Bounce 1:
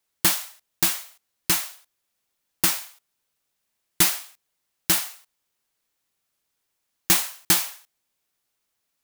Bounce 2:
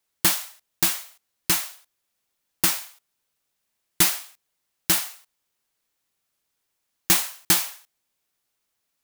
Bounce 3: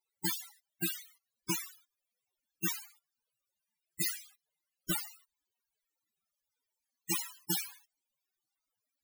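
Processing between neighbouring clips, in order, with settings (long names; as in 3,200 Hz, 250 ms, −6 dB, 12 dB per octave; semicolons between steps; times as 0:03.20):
no processing that can be heard
wave folding −14 dBFS; spectral peaks only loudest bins 32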